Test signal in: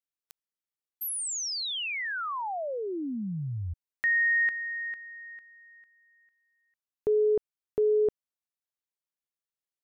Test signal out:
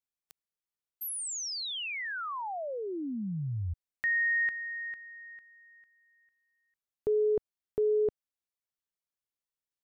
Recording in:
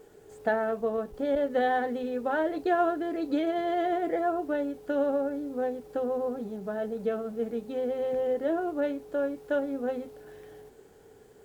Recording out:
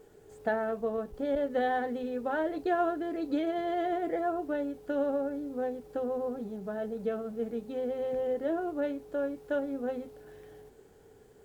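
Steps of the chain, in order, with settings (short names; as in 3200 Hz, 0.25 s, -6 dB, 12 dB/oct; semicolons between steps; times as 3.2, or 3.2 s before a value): low shelf 160 Hz +5 dB; gain -3.5 dB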